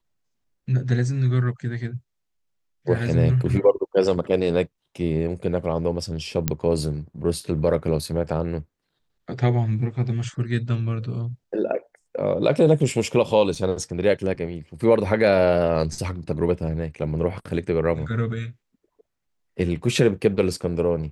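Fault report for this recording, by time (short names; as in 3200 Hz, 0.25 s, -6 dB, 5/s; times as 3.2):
6.48 pop -6 dBFS
13.55 gap 3.5 ms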